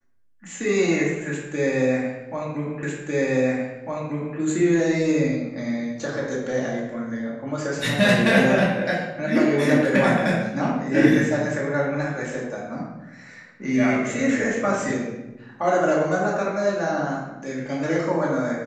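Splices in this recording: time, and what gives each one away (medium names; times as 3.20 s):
2.83 s: repeat of the last 1.55 s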